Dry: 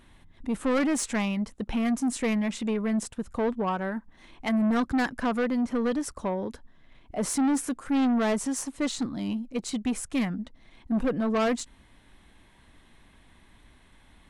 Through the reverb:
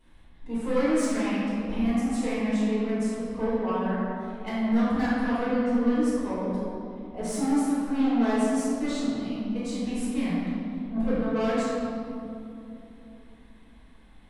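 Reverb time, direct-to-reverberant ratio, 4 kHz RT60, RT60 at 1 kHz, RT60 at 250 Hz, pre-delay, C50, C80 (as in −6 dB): 2.9 s, −12.5 dB, 1.4 s, 2.5 s, 4.2 s, 5 ms, −4.5 dB, −1.5 dB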